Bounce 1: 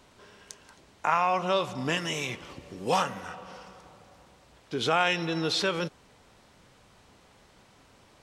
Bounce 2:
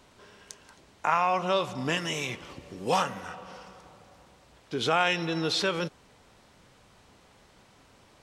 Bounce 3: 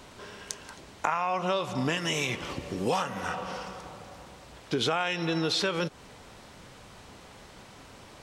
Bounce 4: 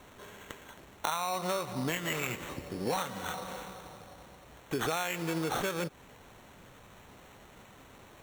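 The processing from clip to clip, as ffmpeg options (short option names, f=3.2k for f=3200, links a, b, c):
-af anull
-af "acompressor=threshold=-34dB:ratio=5,volume=8.5dB"
-af "acrusher=samples=9:mix=1:aa=0.000001,volume=-4.5dB"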